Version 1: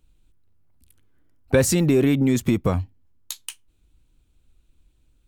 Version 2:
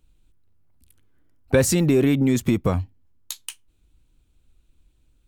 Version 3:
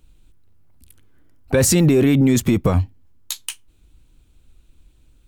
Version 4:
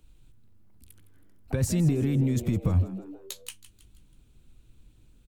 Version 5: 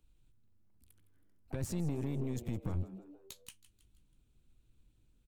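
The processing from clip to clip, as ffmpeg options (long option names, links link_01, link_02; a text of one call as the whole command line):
ffmpeg -i in.wav -af anull out.wav
ffmpeg -i in.wav -af "alimiter=limit=-16dB:level=0:latency=1:release=11,volume=8dB" out.wav
ffmpeg -i in.wav -filter_complex "[0:a]acrossover=split=180[link_01][link_02];[link_02]acompressor=threshold=-38dB:ratio=2[link_03];[link_01][link_03]amix=inputs=2:normalize=0,asplit=5[link_04][link_05][link_06][link_07][link_08];[link_05]adelay=161,afreqshift=100,volume=-14.5dB[link_09];[link_06]adelay=322,afreqshift=200,volume=-21.2dB[link_10];[link_07]adelay=483,afreqshift=300,volume=-28dB[link_11];[link_08]adelay=644,afreqshift=400,volume=-34.7dB[link_12];[link_04][link_09][link_10][link_11][link_12]amix=inputs=5:normalize=0,volume=-4dB" out.wav
ffmpeg -i in.wav -af "aeval=exprs='(tanh(14.1*val(0)+0.75)-tanh(0.75))/14.1':channel_layout=same,volume=-7.5dB" out.wav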